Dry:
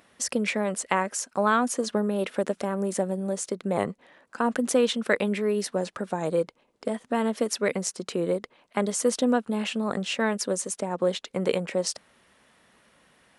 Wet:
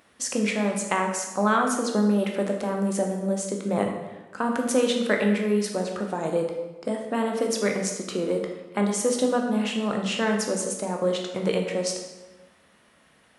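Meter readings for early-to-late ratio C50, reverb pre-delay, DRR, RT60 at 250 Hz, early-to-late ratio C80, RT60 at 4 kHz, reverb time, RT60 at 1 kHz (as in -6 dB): 5.0 dB, 12 ms, 2.0 dB, 1.3 s, 7.0 dB, 0.85 s, 1.2 s, 1.1 s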